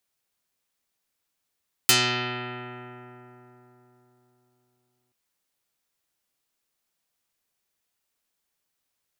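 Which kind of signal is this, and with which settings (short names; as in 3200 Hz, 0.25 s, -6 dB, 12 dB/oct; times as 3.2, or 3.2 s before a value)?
plucked string B2, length 3.23 s, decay 3.91 s, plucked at 0.22, dark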